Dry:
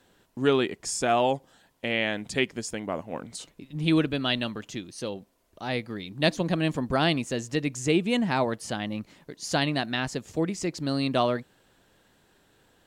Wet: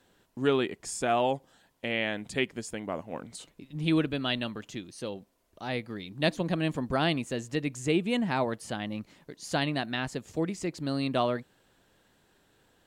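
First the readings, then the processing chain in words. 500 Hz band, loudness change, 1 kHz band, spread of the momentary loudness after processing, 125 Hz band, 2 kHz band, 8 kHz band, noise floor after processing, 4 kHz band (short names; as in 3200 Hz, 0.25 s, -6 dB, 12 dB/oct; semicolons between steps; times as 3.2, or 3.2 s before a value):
-3.0 dB, -3.0 dB, -3.0 dB, 13 LU, -3.0 dB, -3.0 dB, -5.5 dB, -68 dBFS, -4.0 dB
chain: dynamic EQ 5600 Hz, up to -6 dB, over -48 dBFS, Q 2; gain -3 dB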